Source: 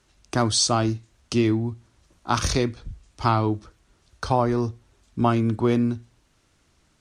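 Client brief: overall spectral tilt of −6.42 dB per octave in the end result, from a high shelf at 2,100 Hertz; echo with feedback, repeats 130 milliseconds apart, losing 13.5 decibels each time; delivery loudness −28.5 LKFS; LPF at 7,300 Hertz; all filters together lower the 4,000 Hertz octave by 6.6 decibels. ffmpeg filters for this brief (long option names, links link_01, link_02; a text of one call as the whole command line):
ffmpeg -i in.wav -af "lowpass=7300,highshelf=frequency=2100:gain=-3.5,equalizer=frequency=4000:width_type=o:gain=-4,aecho=1:1:130|260:0.211|0.0444,volume=-4dB" out.wav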